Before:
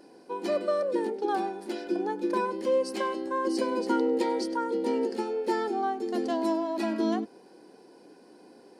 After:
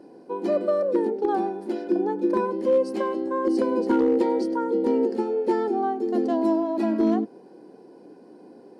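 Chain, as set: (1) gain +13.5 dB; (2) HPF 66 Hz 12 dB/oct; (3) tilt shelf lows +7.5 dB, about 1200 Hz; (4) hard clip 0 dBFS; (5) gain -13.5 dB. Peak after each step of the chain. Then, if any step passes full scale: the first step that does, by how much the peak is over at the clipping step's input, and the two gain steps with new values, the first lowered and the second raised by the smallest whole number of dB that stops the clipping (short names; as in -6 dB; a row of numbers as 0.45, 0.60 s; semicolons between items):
-0.5, -0.5, +4.5, 0.0, -13.5 dBFS; step 3, 4.5 dB; step 1 +8.5 dB, step 5 -8.5 dB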